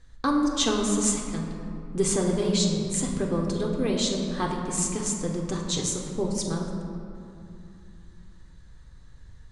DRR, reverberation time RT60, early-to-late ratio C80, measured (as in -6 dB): -0.5 dB, 2.8 s, 4.0 dB